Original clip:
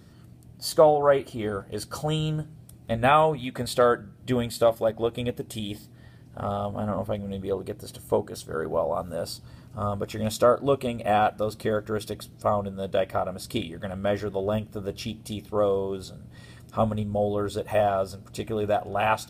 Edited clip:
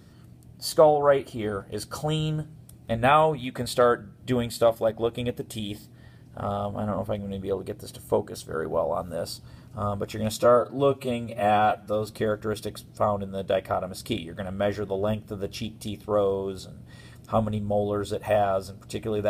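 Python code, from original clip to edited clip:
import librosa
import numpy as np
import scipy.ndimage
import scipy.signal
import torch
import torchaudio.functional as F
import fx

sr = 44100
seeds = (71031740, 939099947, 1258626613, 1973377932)

y = fx.edit(x, sr, fx.stretch_span(start_s=10.4, length_s=1.11, factor=1.5), tone=tone)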